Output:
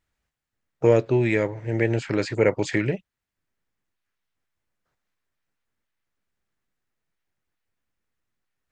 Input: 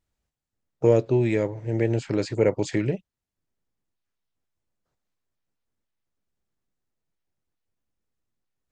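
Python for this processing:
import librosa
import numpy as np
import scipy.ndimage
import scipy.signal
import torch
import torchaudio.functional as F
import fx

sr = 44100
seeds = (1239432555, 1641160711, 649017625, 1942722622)

y = fx.peak_eq(x, sr, hz=1800.0, db=8.5, octaves=1.6)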